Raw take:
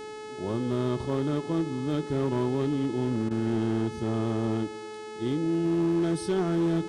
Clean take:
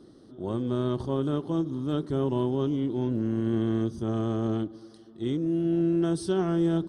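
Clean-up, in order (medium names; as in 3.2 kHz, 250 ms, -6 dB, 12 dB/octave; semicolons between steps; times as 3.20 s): clip repair -20.5 dBFS; de-hum 428.9 Hz, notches 23; interpolate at 3.29 s, 17 ms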